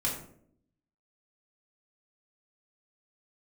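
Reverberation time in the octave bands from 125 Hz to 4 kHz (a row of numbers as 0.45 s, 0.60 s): 0.90 s, 0.95 s, 0.75 s, 0.50 s, 0.45 s, 0.35 s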